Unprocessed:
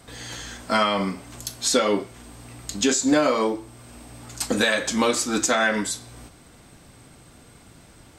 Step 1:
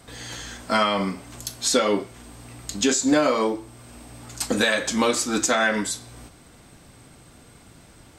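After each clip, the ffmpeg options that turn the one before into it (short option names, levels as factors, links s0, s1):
-af anull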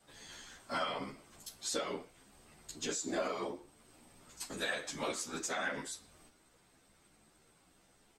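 -filter_complex "[0:a]afftfilt=real='hypot(re,im)*cos(2*PI*random(0))':imag='hypot(re,im)*sin(2*PI*random(1))':win_size=512:overlap=0.75,equalizer=f=98:w=0.45:g=-8.5,asplit=2[s0][s1];[s1]adelay=11.7,afreqshift=0.86[s2];[s0][s2]amix=inputs=2:normalize=1,volume=0.501"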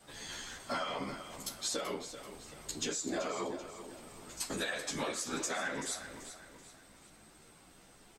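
-af "acompressor=threshold=0.00891:ratio=6,aecho=1:1:384|768|1152|1536:0.266|0.104|0.0405|0.0158,volume=2.37"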